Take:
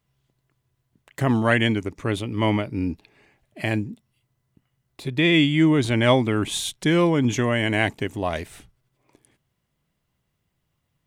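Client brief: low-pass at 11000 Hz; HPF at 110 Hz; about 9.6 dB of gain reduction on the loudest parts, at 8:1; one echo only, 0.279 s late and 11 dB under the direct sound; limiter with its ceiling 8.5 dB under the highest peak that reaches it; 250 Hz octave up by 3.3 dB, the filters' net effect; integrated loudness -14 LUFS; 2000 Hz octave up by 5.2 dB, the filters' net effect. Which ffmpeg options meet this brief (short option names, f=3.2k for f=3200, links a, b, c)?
-af "highpass=110,lowpass=11k,equalizer=f=250:t=o:g=4.5,equalizer=f=2k:t=o:g=6,acompressor=threshold=-20dB:ratio=8,alimiter=limit=-15.5dB:level=0:latency=1,aecho=1:1:279:0.282,volume=13dB"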